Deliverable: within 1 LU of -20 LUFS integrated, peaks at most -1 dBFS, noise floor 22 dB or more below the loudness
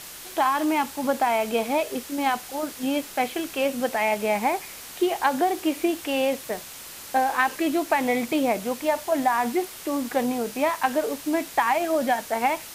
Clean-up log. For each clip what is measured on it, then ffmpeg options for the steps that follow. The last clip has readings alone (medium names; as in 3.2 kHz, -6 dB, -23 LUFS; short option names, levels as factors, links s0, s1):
noise floor -41 dBFS; noise floor target -47 dBFS; loudness -25.0 LUFS; peak level -8.0 dBFS; loudness target -20.0 LUFS
-> -af "afftdn=nr=6:nf=-41"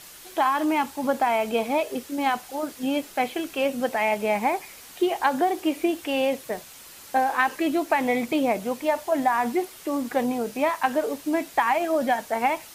noise floor -45 dBFS; noise floor target -47 dBFS
-> -af "afftdn=nr=6:nf=-45"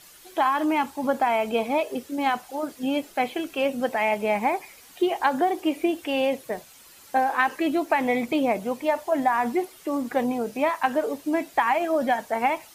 noise floor -50 dBFS; loudness -25.0 LUFS; peak level -8.0 dBFS; loudness target -20.0 LUFS
-> -af "volume=1.78"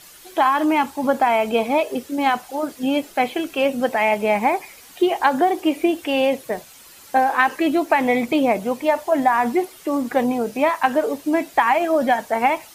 loudness -20.0 LUFS; peak level -3.0 dBFS; noise floor -45 dBFS